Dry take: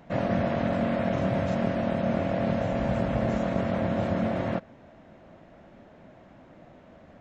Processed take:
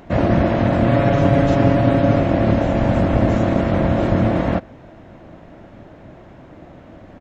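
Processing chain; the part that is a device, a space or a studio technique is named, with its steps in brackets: octave pedal (harmoniser -12 st -1 dB); 0.87–2.2 comb 7.1 ms, depth 70%; gain +8 dB

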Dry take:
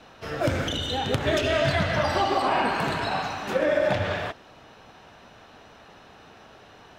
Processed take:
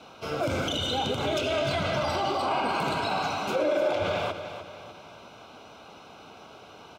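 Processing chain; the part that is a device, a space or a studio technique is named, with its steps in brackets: PA system with an anti-feedback notch (HPF 140 Hz 6 dB/oct; Butterworth band-stop 1800 Hz, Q 3.7; limiter -21.5 dBFS, peak gain reduction 11 dB); 3.56–4.02 resonant low shelf 260 Hz -8 dB, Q 3; feedback echo 0.299 s, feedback 43%, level -10.5 dB; gain +2 dB

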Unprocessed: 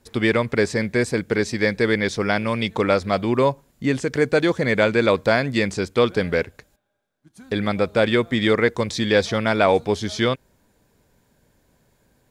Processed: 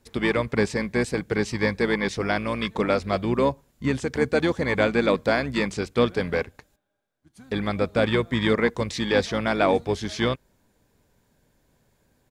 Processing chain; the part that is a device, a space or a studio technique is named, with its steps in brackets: octave pedal (harmoniser -12 st -9 dB); gain -4 dB

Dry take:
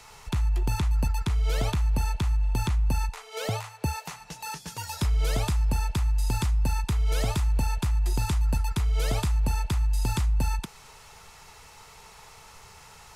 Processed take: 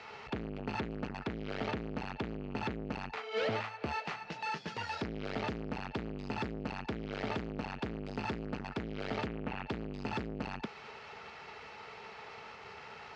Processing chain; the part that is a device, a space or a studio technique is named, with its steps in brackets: guitar amplifier (tube stage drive 35 dB, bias 0.55; tone controls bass -9 dB, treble -4 dB; speaker cabinet 93–4100 Hz, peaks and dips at 220 Hz +7 dB, 410 Hz +4 dB, 1000 Hz -6 dB, 3600 Hz -5 dB); 9.26–9.67 resonant high shelf 3800 Hz -8.5 dB, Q 1.5; gain +7 dB

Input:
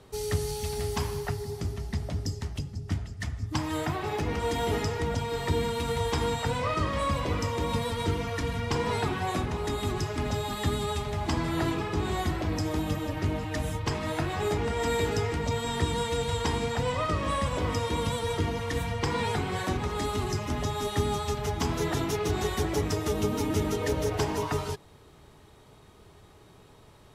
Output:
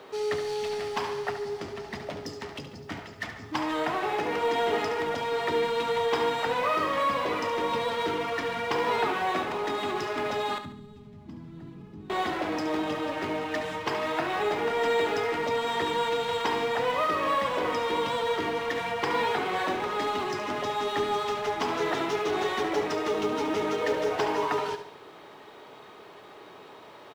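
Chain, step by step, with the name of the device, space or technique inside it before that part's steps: phone line with mismatched companding (BPF 390–3400 Hz; G.711 law mismatch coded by mu); 10.58–12.1 EQ curve 220 Hz 0 dB, 350 Hz -18 dB, 630 Hz -29 dB, 2100 Hz -30 dB, 5700 Hz -25 dB; feedback echo 71 ms, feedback 41%, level -10 dB; gain +3 dB

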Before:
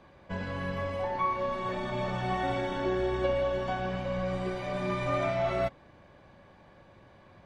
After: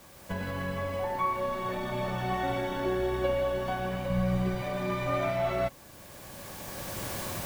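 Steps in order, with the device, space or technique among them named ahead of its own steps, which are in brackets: cheap recorder with automatic gain (white noise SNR 25 dB; recorder AGC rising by 13 dB/s); 4.1–4.62 resonant low shelf 230 Hz +6.5 dB, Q 1.5

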